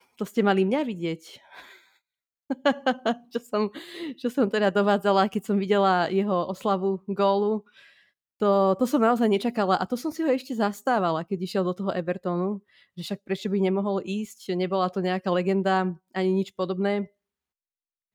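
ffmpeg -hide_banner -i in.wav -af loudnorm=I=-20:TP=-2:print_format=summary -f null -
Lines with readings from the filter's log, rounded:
Input Integrated:    -25.5 LUFS
Input True Peak:      -8.4 dBTP
Input LRA:             3.6 LU
Input Threshold:     -36.0 LUFS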